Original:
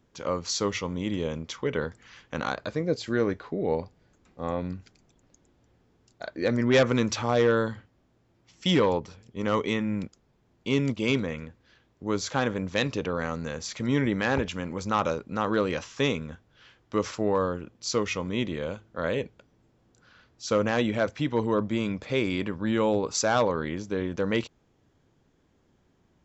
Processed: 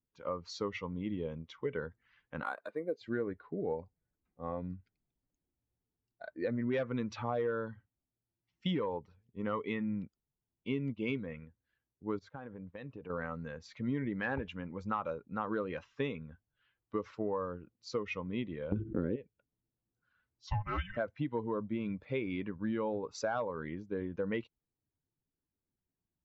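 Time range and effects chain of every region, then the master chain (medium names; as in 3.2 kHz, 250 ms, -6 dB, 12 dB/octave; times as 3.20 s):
2.43–3.01 s: band-pass 290–5400 Hz + careless resampling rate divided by 4×, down none, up hold
12.19–13.10 s: expander -34 dBFS + treble shelf 3 kHz -10.5 dB + compression, threshold -31 dBFS
18.72–19.16 s: gate -53 dBFS, range -17 dB + resonant low shelf 500 Hz +11 dB, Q 3 + level flattener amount 70%
20.47–20.97 s: high-pass 630 Hz + comb 4.1 ms, depth 85% + frequency shift -410 Hz
whole clip: expander on every frequency bin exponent 1.5; low-pass 2.3 kHz 12 dB/octave; compression 6:1, threshold -31 dBFS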